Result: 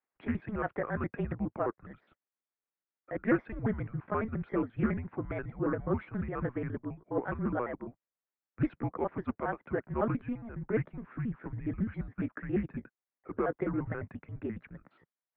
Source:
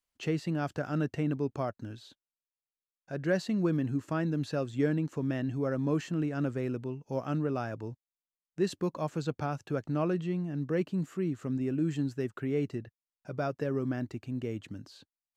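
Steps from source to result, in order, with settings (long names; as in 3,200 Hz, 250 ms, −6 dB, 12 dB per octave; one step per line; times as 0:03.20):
pitch shifter gated in a rhythm +5 semitones, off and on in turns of 69 ms
single-sideband voice off tune −230 Hz 410–2,300 Hz
highs frequency-modulated by the lows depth 0.21 ms
level +3.5 dB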